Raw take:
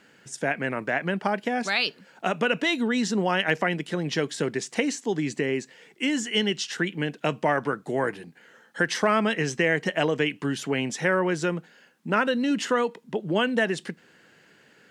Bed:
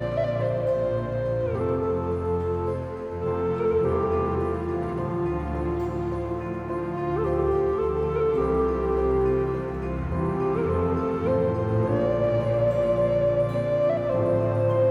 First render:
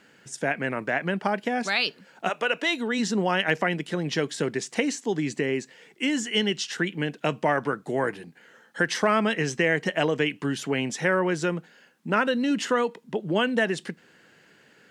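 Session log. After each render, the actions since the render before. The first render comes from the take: 2.28–2.98 s: high-pass 570 Hz -> 240 Hz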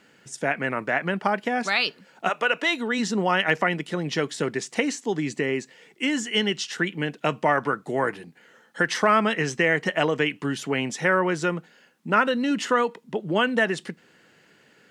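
band-stop 1.6 kHz, Q 18; dynamic bell 1.3 kHz, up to +5 dB, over -37 dBFS, Q 1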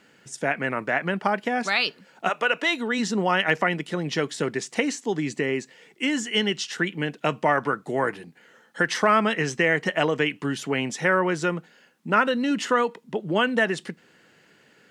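no audible change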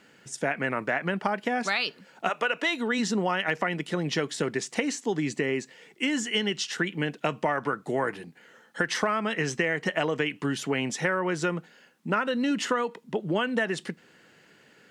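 compression, threshold -22 dBFS, peak gain reduction 8.5 dB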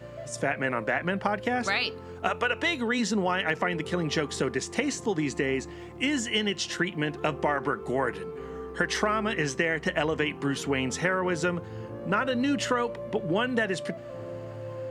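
add bed -15.5 dB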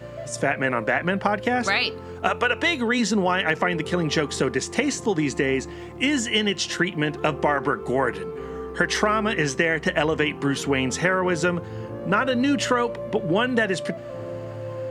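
trim +5 dB

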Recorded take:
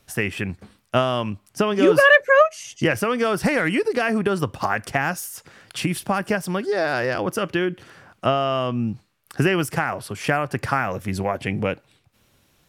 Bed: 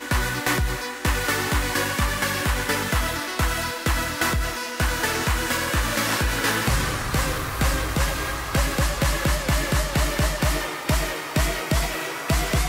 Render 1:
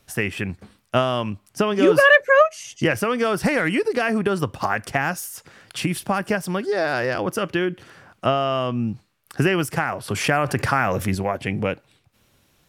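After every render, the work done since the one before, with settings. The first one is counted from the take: 10.08–11.15 s: level flattener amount 50%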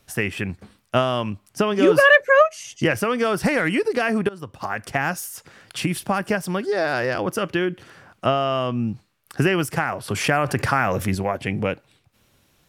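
4.29–5.06 s: fade in, from -19.5 dB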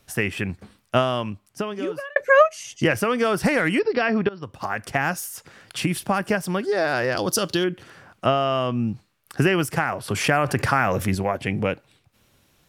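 0.96–2.16 s: fade out; 3.79–4.43 s: brick-wall FIR low-pass 5.7 kHz; 7.17–7.64 s: resonant high shelf 3.1 kHz +10 dB, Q 3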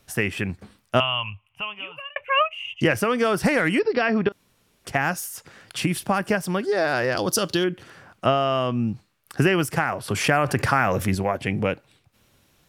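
1.00–2.81 s: FFT filter 100 Hz 0 dB, 210 Hz -17 dB, 360 Hz -24 dB, 1 kHz +2 dB, 1.7 kHz -11 dB, 2.8 kHz +14 dB, 4.3 kHz -26 dB, 6.2 kHz -28 dB, 11 kHz -19 dB; 4.32–4.85 s: room tone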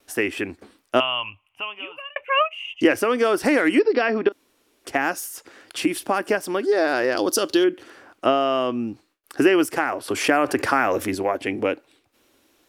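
gate with hold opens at -57 dBFS; resonant low shelf 220 Hz -10 dB, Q 3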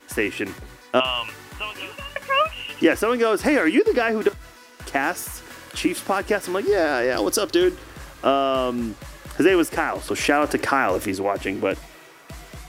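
add bed -17.5 dB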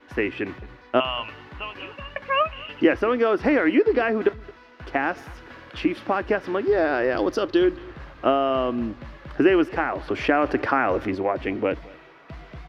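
distance through air 290 m; delay 220 ms -23 dB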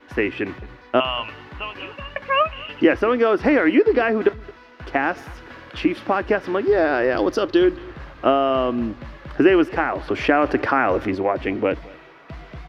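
trim +3 dB; peak limiter -3 dBFS, peak gain reduction 1.5 dB

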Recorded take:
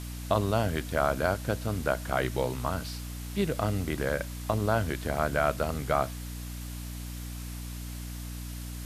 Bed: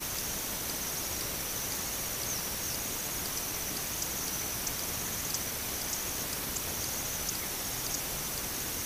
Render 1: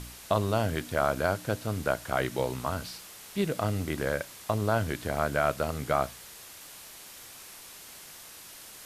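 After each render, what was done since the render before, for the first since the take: de-hum 60 Hz, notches 5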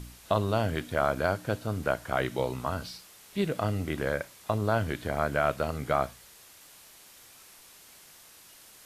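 noise print and reduce 6 dB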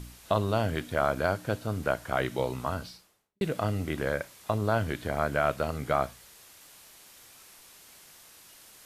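2.70–3.41 s: studio fade out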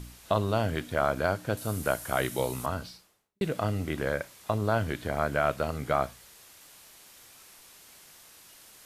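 1.57–2.66 s: peaking EQ 11 kHz +14.5 dB 1.3 oct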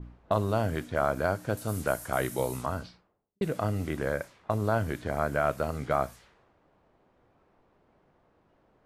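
level-controlled noise filter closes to 580 Hz, open at -26.5 dBFS; dynamic bell 3.3 kHz, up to -7 dB, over -48 dBFS, Q 1.1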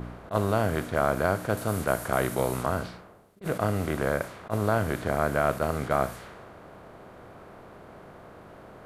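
spectral levelling over time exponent 0.6; attacks held to a fixed rise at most 350 dB/s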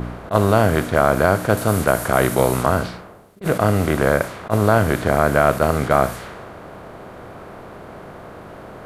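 trim +10 dB; peak limiter -1 dBFS, peak gain reduction 2.5 dB

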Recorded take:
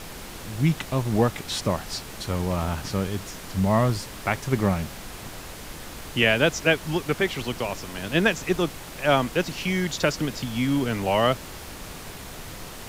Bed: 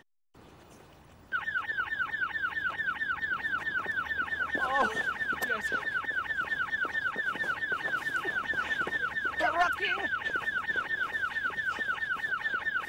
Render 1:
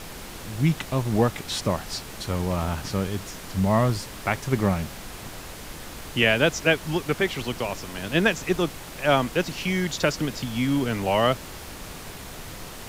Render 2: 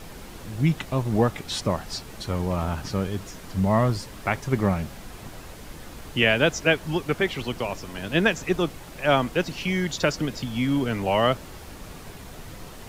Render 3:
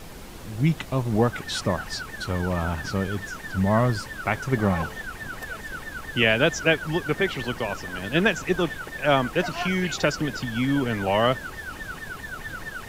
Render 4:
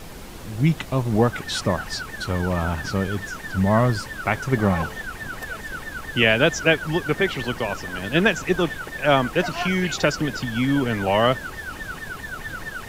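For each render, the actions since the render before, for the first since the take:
no audible change
noise reduction 6 dB, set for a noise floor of -39 dBFS
add bed -5 dB
trim +2.5 dB

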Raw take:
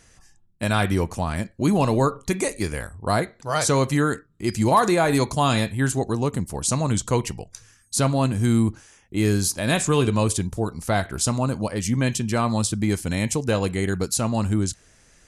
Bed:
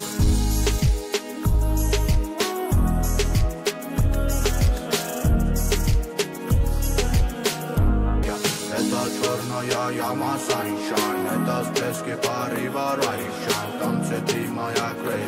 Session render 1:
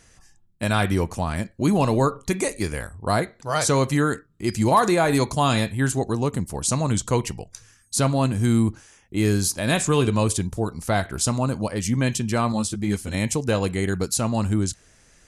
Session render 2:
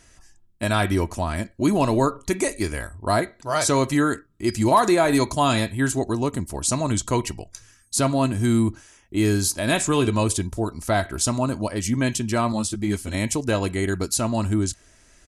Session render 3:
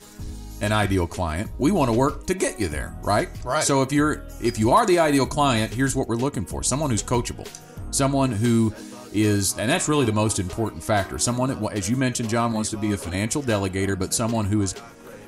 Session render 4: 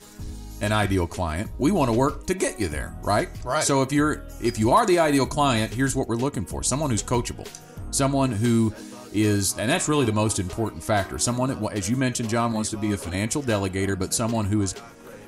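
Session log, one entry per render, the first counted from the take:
12.52–13.14 s: three-phase chorus
comb 3.1 ms, depth 42%
add bed -16 dB
trim -1 dB

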